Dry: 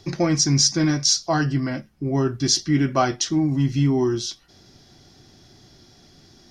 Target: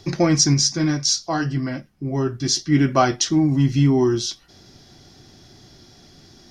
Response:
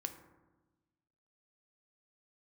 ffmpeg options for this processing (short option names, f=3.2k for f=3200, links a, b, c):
-filter_complex "[0:a]asplit=3[a][b][c];[a]afade=t=out:st=0.53:d=0.02[d];[b]flanger=delay=6.6:depth=3.7:regen=-57:speed=1.1:shape=triangular,afade=t=in:st=0.53:d=0.02,afade=t=out:st=2.71:d=0.02[e];[c]afade=t=in:st=2.71:d=0.02[f];[d][e][f]amix=inputs=3:normalize=0,volume=3dB"